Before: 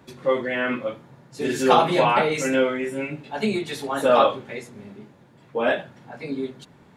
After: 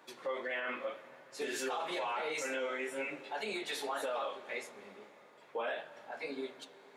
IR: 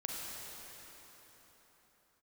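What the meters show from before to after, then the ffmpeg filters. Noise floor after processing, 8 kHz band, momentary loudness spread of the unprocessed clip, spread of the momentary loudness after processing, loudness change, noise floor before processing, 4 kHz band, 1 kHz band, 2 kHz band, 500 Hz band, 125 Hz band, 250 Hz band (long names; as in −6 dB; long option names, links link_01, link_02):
−59 dBFS, −9.0 dB, 19 LU, 14 LU, −16.0 dB, −53 dBFS, −11.5 dB, −17.0 dB, −11.0 dB, −16.0 dB, −30.0 dB, −20.0 dB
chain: -filter_complex "[0:a]highpass=530,acompressor=threshold=-30dB:ratio=2,flanger=delay=5.6:depth=6.5:regen=74:speed=1.7:shape=triangular,alimiter=level_in=5.5dB:limit=-24dB:level=0:latency=1:release=53,volume=-5.5dB,asplit=2[link_01][link_02];[1:a]atrim=start_sample=2205,lowpass=6200[link_03];[link_02][link_03]afir=irnorm=-1:irlink=0,volume=-15dB[link_04];[link_01][link_04]amix=inputs=2:normalize=0"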